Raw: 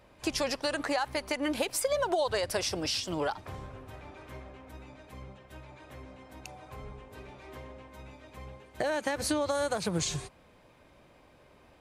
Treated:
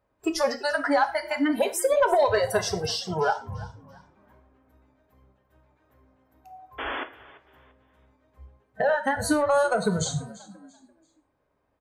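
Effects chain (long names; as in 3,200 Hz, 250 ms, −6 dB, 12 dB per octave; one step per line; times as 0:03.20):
noise reduction from a noise print of the clip's start 24 dB
sound drawn into the spectrogram noise, 0:06.78–0:07.04, 240–3,500 Hz −39 dBFS
high shelf with overshoot 2,000 Hz −6 dB, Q 1.5
soft clipping −20 dBFS, distortion −23 dB
on a send: echo with shifted repeats 340 ms, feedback 32%, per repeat +54 Hz, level −19 dB
on the sum: reverb whose tail is shaped and stops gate 140 ms falling, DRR 7.5 dB
level +8.5 dB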